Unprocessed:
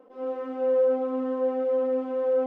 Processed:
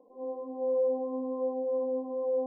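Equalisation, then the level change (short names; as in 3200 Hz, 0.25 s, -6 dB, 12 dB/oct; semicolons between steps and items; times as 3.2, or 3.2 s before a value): brick-wall FIR low-pass 1100 Hz; -5.5 dB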